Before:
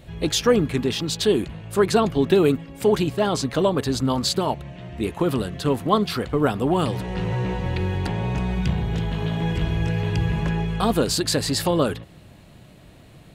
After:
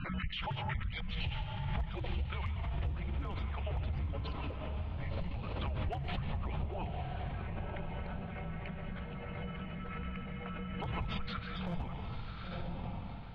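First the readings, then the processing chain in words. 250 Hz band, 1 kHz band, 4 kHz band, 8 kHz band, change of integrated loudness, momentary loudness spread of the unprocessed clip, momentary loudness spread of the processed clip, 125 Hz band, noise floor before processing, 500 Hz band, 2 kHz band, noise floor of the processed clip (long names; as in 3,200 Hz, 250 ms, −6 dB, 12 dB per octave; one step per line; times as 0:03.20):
−20.0 dB, −16.0 dB, −18.0 dB, below −40 dB, −17.0 dB, 6 LU, 5 LU, −12.5 dB, −47 dBFS, −25.0 dB, −12.0 dB, −43 dBFS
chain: time-frequency cells dropped at random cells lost 36%
on a send: feedback delay with all-pass diffusion 1,041 ms, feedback 42%, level −4 dB
on the sum: single-sideband voice off tune −350 Hz 160–3,500 Hz
high-shelf EQ 2,300 Hz −11 dB
asymmetric clip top −15.5 dBFS, bottom −10.5 dBFS
downward compressor, threshold −24 dBFS, peak gain reduction 9.5 dB
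parametric band 290 Hz −10.5 dB 2.4 octaves
reverb whose tail is shaped and stops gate 230 ms rising, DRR 9.5 dB
background raised ahead of every attack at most 26 dB per second
level −7 dB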